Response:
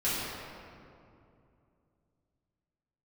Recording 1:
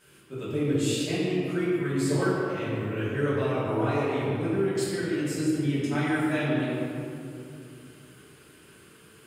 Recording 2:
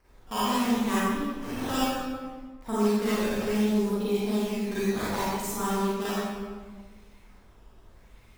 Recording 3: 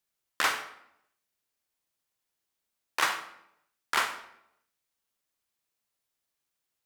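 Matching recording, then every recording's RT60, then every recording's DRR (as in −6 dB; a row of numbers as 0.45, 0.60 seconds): 1; 2.6, 1.5, 0.75 seconds; −12.0, −10.5, 7.0 decibels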